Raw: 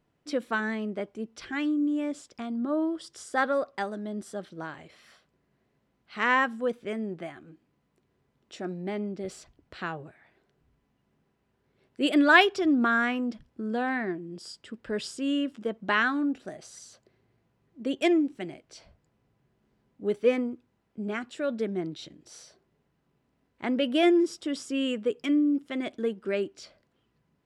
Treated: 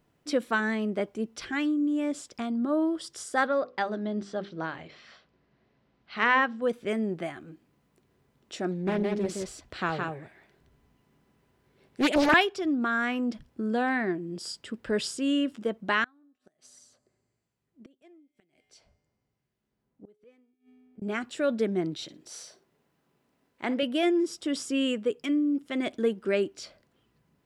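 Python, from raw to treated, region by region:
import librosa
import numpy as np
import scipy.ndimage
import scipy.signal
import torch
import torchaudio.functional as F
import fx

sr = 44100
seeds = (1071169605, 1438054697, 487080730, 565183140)

y = fx.chain(x, sr, fx.lowpass(hz=5200.0, slope=24),
    fx.hum_notches(base_hz=50, count=10), at=(3.47, 6.62))
y = fx.chain(y, sr, fx.echo_single(ms=167, db=-3.5),
    fx.doppler_dist(depth_ms=0.86), at=(8.71, 12.34))
y = fx.chain(y, sr, fx.comb_fb(f0_hz=84.0, decay_s=1.7, harmonics='odd', damping=0.0, mix_pct=50),
    fx.gate_flip(shuts_db=-35.0, range_db=-25),
    fx.harmonic_tremolo(hz=1.0, depth_pct=50, crossover_hz=1700.0), at=(16.04, 21.02))
y = fx.chain(y, sr, fx.highpass(hz=250.0, slope=6),
    fx.room_flutter(wall_m=9.4, rt60_s=0.21), at=(22.03, 23.83))
y = fx.rider(y, sr, range_db=4, speed_s=0.5)
y = fx.high_shelf(y, sr, hz=7800.0, db=5.5)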